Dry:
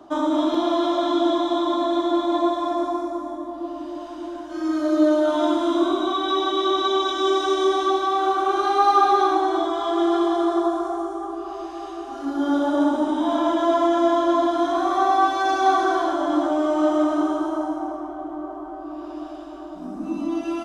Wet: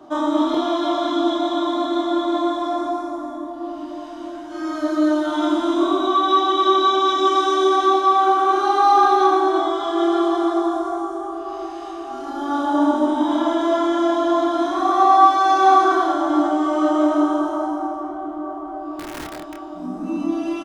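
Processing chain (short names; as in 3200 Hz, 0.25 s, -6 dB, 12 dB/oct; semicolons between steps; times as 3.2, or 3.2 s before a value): 18.99–19.61 wrapped overs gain 28 dB; doubler 27 ms -3.5 dB; on a send: reverb RT60 0.35 s, pre-delay 3 ms, DRR 5.5 dB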